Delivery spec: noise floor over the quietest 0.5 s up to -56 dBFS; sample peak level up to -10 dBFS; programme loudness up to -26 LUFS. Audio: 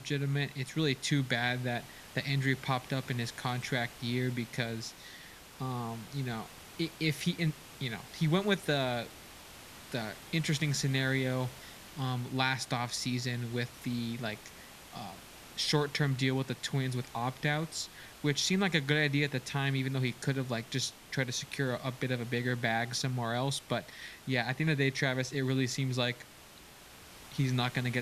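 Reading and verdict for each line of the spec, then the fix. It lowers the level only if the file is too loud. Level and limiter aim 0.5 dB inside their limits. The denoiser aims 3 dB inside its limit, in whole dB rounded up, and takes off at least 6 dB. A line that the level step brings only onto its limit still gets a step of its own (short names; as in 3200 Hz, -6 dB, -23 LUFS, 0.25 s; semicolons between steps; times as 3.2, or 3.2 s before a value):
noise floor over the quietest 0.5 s -54 dBFS: fail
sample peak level -12.5 dBFS: OK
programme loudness -33.0 LUFS: OK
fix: denoiser 6 dB, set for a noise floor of -54 dBFS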